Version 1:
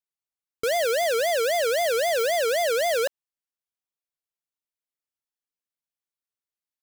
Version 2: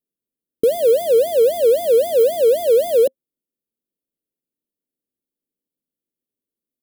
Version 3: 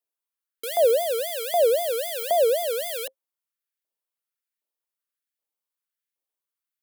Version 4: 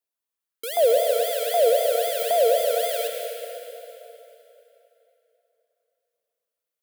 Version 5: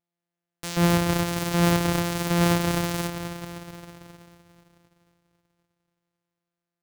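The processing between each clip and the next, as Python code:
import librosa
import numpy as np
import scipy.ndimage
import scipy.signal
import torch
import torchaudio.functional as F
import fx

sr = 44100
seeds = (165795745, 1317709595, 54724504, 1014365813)

y1 = fx.curve_eq(x, sr, hz=(110.0, 250.0, 530.0, 810.0, 1700.0, 3200.0, 6000.0, 9700.0, 16000.0), db=(0, 13, 5, -16, -25, -9, -15, -4, -1))
y1 = y1 * librosa.db_to_amplitude(6.0)
y2 = fx.filter_lfo_highpass(y1, sr, shape='saw_up', hz=1.3, low_hz=680.0, high_hz=1900.0, q=2.1)
y3 = fx.rev_plate(y2, sr, seeds[0], rt60_s=3.4, hf_ratio=0.8, predelay_ms=85, drr_db=2.5)
y4 = np.r_[np.sort(y3[:len(y3) // 256 * 256].reshape(-1, 256), axis=1).ravel(), y3[len(y3) // 256 * 256:]]
y4 = y4 * librosa.db_to_amplitude(-2.0)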